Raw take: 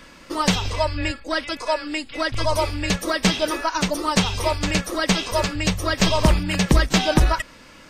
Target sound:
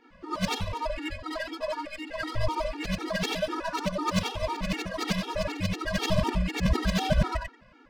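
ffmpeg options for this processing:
ffmpeg -i in.wav -af "afftfilt=real='re':imag='-im':win_size=8192:overlap=0.75,adynamicsmooth=sensitivity=4:basefreq=2200,afftfilt=real='re*gt(sin(2*PI*4*pts/sr)*(1-2*mod(floor(b*sr/1024/240),2)),0)':imag='im*gt(sin(2*PI*4*pts/sr)*(1-2*mod(floor(b*sr/1024/240),2)),0)':win_size=1024:overlap=0.75" out.wav

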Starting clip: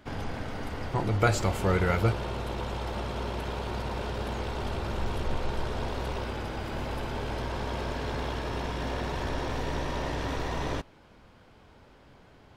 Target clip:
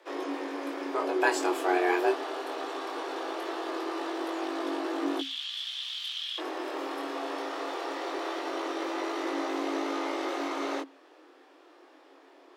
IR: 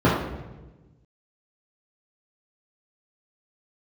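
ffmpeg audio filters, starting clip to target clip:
-filter_complex "[0:a]asettb=1/sr,asplit=3[link_01][link_02][link_03];[link_01]atrim=end=5.194[link_04];[link_02]atrim=start=5.19:end=6.38,asetpts=PTS-STARTPTS,afade=type=in:duration=0.004:curve=qsin,afade=type=out:start_time=1.186:duration=0.004:curve=qsin,highpass=frequency=3000:width_type=q:width=8.6[link_05];[link_03]atrim=start=6.376[link_06];[link_04][link_05]acrossfade=duration=0.004:curve1=hsin:curve2=qsin[link_07];[link_07][link_06]acrossfade=duration=0.004:curve1=qsin:curve2=hsin,flanger=delay=19.5:depth=5:speed=0.21,afreqshift=270,volume=2dB"

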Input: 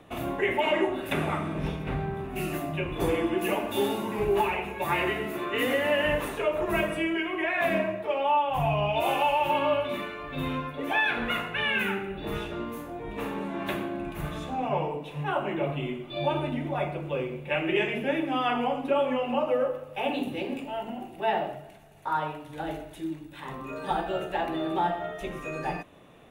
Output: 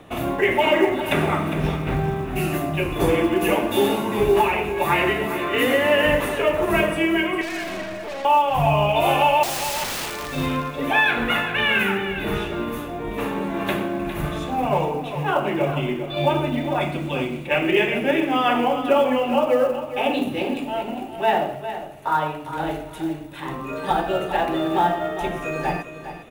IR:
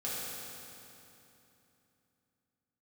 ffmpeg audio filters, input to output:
-filter_complex "[0:a]asettb=1/sr,asplit=3[link_01][link_02][link_03];[link_01]atrim=end=7.414[link_04];[link_02]atrim=start=7.41:end=8.25,asetpts=PTS-STARTPTS,afade=type=in:duration=0.004:curve=qsin,afade=type=out:start_time=0.836:duration=0.004:curve=qsin,aeval=exprs='(tanh(70.8*val(0)+0.25)-tanh(0.25))/70.8':channel_layout=same[link_05];[link_03]atrim=start=8.246[link_06];[link_04][link_05]acrossfade=duration=0.004:curve1=hsin:curve2=qsin[link_07];[link_07][link_06]acrossfade=duration=0.004:curve1=qsin:curve2=hsin,asettb=1/sr,asplit=3[link_08][link_09][link_10];[link_08]atrim=end=9.434[link_11];[link_09]atrim=start=9.43:end=10.29,asetpts=PTS-STARTPTS,afade=type=in:duration=0.004:curve=qsin,afade=type=out:start_time=0.856:duration=0.004:curve=qsin,aeval=exprs='(mod(33.5*val(0)+1,2)-1)/33.5':channel_layout=same[link_12];[link_10]atrim=start=10.286[link_13];[link_11][link_12]acrossfade=duration=0.004:curve1=hsin:curve2=qsin[link_14];[link_14][link_13]acrossfade=duration=0.004:curve1=qsin:curve2=hsin,asettb=1/sr,asplit=3[link_15][link_16][link_17];[link_15]atrim=end=16.814[link_18];[link_16]atrim=start=16.81:end=17.47,asetpts=PTS-STARTPTS,afade=type=in:duration=0.004:curve=qsin,afade=type=out:start_time=0.656:duration=0.004:curve=qsin,equalizer=frequency=250:width_type=o:width=1:gain=7,equalizer=frequency=500:width_type=o:width=1:gain=-8,equalizer=frequency=4000:width_type=o:width=1:gain=6,equalizer=frequency=8000:width_type=o:width=1:gain=9[link_19];[link_17]atrim=start=17.466[link_20];[link_18][link_19]acrossfade=duration=0.004:curve1=hsin:curve2=qsin[link_21];[link_21][link_20]acrossfade=duration=0.004:curve1=qsin:curve2=hsin,acrusher=bits=8:mode=log:mix=0:aa=0.000001,aecho=1:1:406|812|1218:0.282|0.0648|0.0149,volume=7dB"

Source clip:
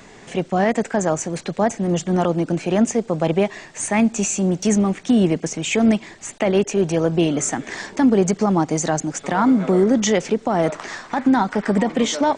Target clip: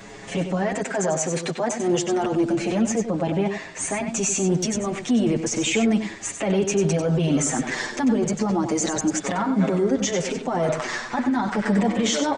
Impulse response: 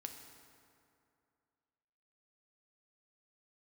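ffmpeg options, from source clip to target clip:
-filter_complex "[0:a]asettb=1/sr,asplit=3[link_01][link_02][link_03];[link_01]atrim=end=0.794[link_04];[link_02]atrim=start=0.79:end=2.23,asetpts=PTS-STARTPTS,afade=type=in:duration=0.004:curve=qsin,afade=type=out:start_time=1.436:duration=0.004:curve=qsin,highpass=frequency=260:poles=1[link_05];[link_03]atrim=start=2.226[link_06];[link_04][link_05]acrossfade=duration=0.004:curve1=hsin:curve2=qsin[link_07];[link_07][link_06]acrossfade=duration=0.004:curve1=qsin:curve2=hsin,asettb=1/sr,asplit=3[link_08][link_09][link_10];[link_08]atrim=end=2.804[link_11];[link_09]atrim=start=2.8:end=3.92,asetpts=PTS-STARTPTS,afade=type=in:duration=0.004:curve=qsin,afade=type=out:start_time=1.116:duration=0.004:curve=qsin,highshelf=frequency=4600:gain=-6.5[link_12];[link_10]atrim=start=3.916[link_13];[link_11][link_12]acrossfade=duration=0.004:curve1=hsin:curve2=qsin[link_14];[link_14][link_13]acrossfade=duration=0.004:curve1=qsin:curve2=hsin,alimiter=limit=-17.5dB:level=0:latency=1:release=12,asplit=2[link_15][link_16];[link_16]aecho=0:1:95:0.398[link_17];[link_15][link_17]amix=inputs=2:normalize=0,asplit=2[link_18][link_19];[link_19]adelay=6.8,afreqshift=-0.33[link_20];[link_18][link_20]amix=inputs=2:normalize=1,volume=5.5dB"

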